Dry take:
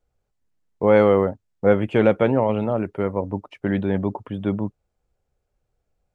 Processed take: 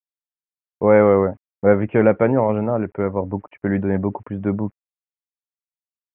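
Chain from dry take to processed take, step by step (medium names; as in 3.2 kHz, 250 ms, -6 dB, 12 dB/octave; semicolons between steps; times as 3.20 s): bit crusher 10-bit; steep low-pass 2.3 kHz 36 dB/octave; trim +2 dB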